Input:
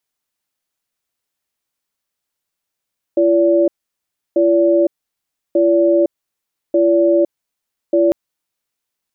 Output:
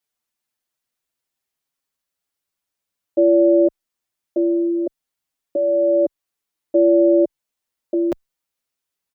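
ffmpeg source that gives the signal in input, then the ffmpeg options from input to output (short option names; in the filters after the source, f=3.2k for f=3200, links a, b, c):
-f lavfi -i "aevalsrc='0.237*(sin(2*PI*340*t)+sin(2*PI*575*t))*clip(min(mod(t,1.19),0.51-mod(t,1.19))/0.005,0,1)':d=4.95:s=44100"
-filter_complex "[0:a]asplit=2[a][b];[b]adelay=6.4,afreqshift=0.29[c];[a][c]amix=inputs=2:normalize=1"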